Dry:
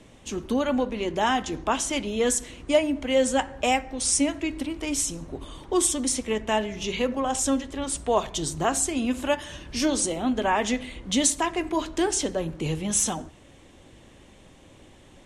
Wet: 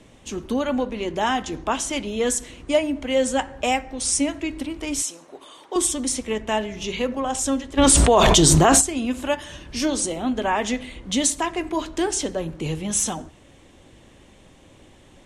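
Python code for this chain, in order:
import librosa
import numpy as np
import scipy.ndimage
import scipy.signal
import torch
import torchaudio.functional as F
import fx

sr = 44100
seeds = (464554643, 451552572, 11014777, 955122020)

y = fx.highpass(x, sr, hz=510.0, slope=12, at=(5.02, 5.76))
y = fx.env_flatten(y, sr, amount_pct=100, at=(7.77, 8.8), fade=0.02)
y = F.gain(torch.from_numpy(y), 1.0).numpy()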